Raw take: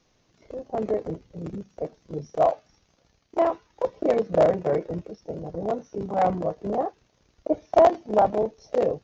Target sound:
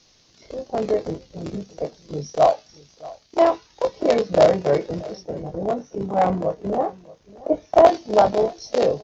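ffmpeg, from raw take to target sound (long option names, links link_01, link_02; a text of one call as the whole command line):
ffmpeg -i in.wav -filter_complex "[0:a]asetnsamples=nb_out_samples=441:pad=0,asendcmd='5.22 equalizer g 2;7.87 equalizer g 14.5',equalizer=frequency=4700:width_type=o:width=1.4:gain=13,asplit=2[link_01][link_02];[link_02]adelay=21,volume=-8dB[link_03];[link_01][link_03]amix=inputs=2:normalize=0,aecho=1:1:629:0.0891,volume=3dB" out.wav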